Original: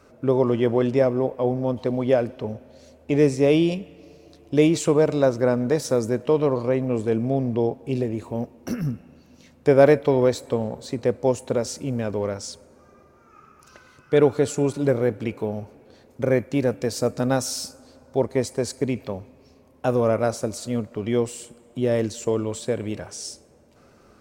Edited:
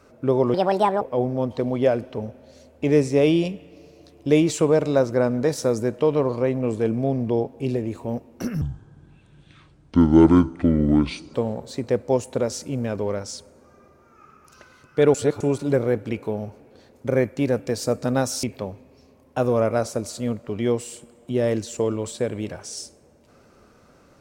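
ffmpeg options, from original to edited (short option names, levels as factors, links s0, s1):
-filter_complex "[0:a]asplit=8[s0][s1][s2][s3][s4][s5][s6][s7];[s0]atrim=end=0.544[s8];[s1]atrim=start=0.54:end=1.28,asetpts=PTS-STARTPTS,asetrate=68796,aresample=44100,atrim=end_sample=20919,asetpts=PTS-STARTPTS[s9];[s2]atrim=start=1.276:end=8.884[s10];[s3]atrim=start=8.88:end=10.49,asetpts=PTS-STARTPTS,asetrate=26019,aresample=44100[s11];[s4]atrim=start=10.486:end=14.292[s12];[s5]atrim=start=14.288:end=14.552,asetpts=PTS-STARTPTS,areverse[s13];[s6]atrim=start=14.548:end=17.582[s14];[s7]atrim=start=18.908[s15];[s8][s9]acrossfade=d=0.004:c1=hsin:c2=hsin[s16];[s16][s10]acrossfade=d=0.004:c1=hsin:c2=hsin[s17];[s17][s11]acrossfade=d=0.004:c1=hsin:c2=hsin[s18];[s18][s12]acrossfade=d=0.004:c1=hsin:c2=hsin[s19];[s19][s13]acrossfade=d=0.004:c1=hsin:c2=hsin[s20];[s20][s14]acrossfade=d=0.004:c1=hsin:c2=hsin[s21];[s21][s15]acrossfade=d=0.004:c1=hsin:c2=hsin"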